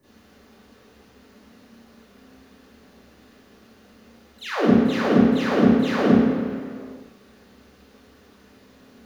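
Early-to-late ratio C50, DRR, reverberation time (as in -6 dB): -4.0 dB, -13.5 dB, 2.1 s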